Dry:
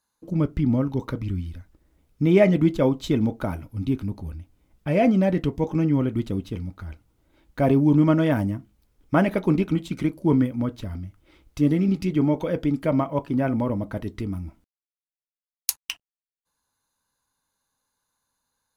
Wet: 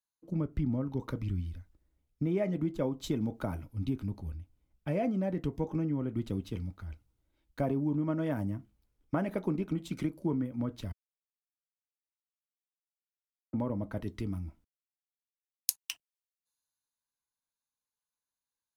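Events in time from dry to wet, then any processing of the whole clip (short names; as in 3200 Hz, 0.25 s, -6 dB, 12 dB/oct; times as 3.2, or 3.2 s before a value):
10.92–13.53 mute
whole clip: dynamic EQ 3100 Hz, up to -5 dB, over -42 dBFS, Q 0.78; compressor 6:1, threshold -23 dBFS; three-band expander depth 40%; gain -5 dB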